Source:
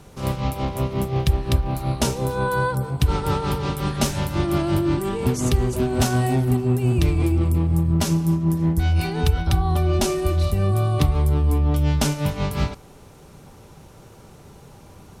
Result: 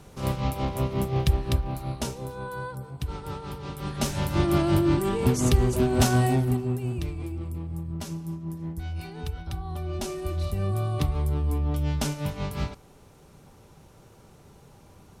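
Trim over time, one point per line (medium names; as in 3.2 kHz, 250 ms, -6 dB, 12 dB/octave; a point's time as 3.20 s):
1.33 s -3 dB
2.41 s -13 dB
3.57 s -13 dB
4.36 s -1 dB
6.23 s -1 dB
7.17 s -14 dB
9.63 s -14 dB
10.61 s -7 dB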